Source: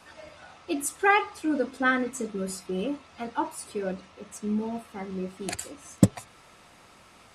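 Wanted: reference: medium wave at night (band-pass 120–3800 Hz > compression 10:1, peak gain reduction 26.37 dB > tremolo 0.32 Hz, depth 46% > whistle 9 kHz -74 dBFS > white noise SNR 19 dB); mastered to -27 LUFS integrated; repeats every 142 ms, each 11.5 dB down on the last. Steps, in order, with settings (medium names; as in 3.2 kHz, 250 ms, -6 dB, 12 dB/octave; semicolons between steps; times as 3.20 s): band-pass 120–3800 Hz; feedback delay 142 ms, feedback 27%, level -11.5 dB; compression 10:1, threshold -39 dBFS; tremolo 0.32 Hz, depth 46%; whistle 9 kHz -74 dBFS; white noise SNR 19 dB; trim +20 dB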